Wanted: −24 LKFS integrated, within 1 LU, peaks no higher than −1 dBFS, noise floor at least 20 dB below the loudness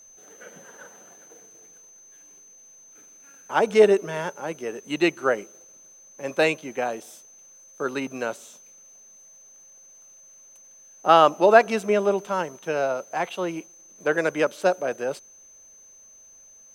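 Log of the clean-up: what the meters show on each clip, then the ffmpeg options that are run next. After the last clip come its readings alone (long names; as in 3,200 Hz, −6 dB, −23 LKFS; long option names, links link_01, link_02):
interfering tone 6,200 Hz; level of the tone −48 dBFS; integrated loudness −23.0 LKFS; sample peak −1.5 dBFS; target loudness −24.0 LKFS
→ -af "bandreject=frequency=6200:width=30"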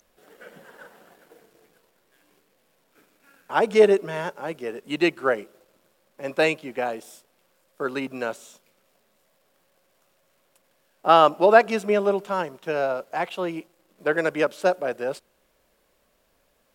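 interfering tone none found; integrated loudness −23.0 LKFS; sample peak −1.5 dBFS; target loudness −24.0 LKFS
→ -af "volume=-1dB"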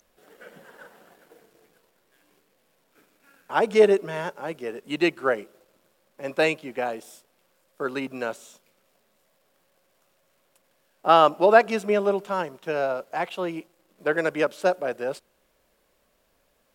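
integrated loudness −24.0 LKFS; sample peak −2.5 dBFS; background noise floor −68 dBFS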